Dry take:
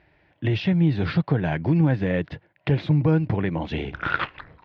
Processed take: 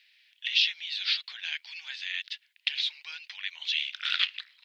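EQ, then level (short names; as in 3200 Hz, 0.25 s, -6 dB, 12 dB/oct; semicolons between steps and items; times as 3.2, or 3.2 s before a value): inverse Chebyshev high-pass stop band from 290 Hz, stop band 80 dB; resonant high shelf 2400 Hz +14 dB, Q 1.5; -2.5 dB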